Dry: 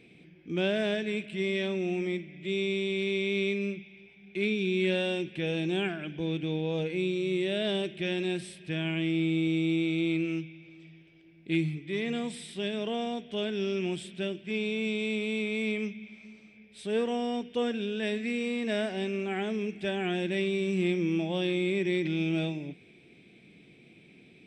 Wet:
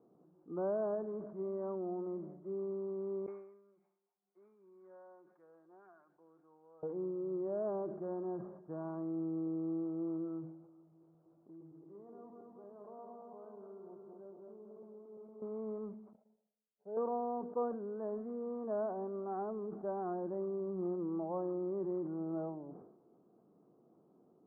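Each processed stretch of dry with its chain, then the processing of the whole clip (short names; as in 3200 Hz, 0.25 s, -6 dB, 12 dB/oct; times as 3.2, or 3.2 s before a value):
3.26–6.83 band-pass 2400 Hz, Q 3.2 + comb 5.6 ms, depth 47% + core saturation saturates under 2000 Hz
10.8–15.42 regenerating reverse delay 0.115 s, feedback 74%, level -4 dB + compressor 2.5:1, threshold -49 dBFS
16.13–16.97 gate -48 dBFS, range -33 dB + low shelf 310 Hz -10 dB + fixed phaser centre 310 Hz, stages 6
whole clip: steep low-pass 1200 Hz 72 dB/oct; differentiator; sustainer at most 68 dB/s; gain +17.5 dB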